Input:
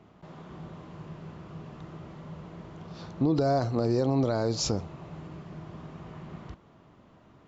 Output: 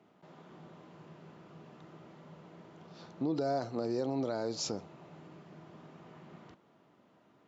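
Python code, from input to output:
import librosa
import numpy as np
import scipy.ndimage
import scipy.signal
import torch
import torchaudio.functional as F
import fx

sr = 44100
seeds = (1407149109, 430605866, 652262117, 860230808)

y = scipy.signal.sosfilt(scipy.signal.butter(2, 200.0, 'highpass', fs=sr, output='sos'), x)
y = fx.notch(y, sr, hz=1100.0, q=14.0)
y = y * 10.0 ** (-6.5 / 20.0)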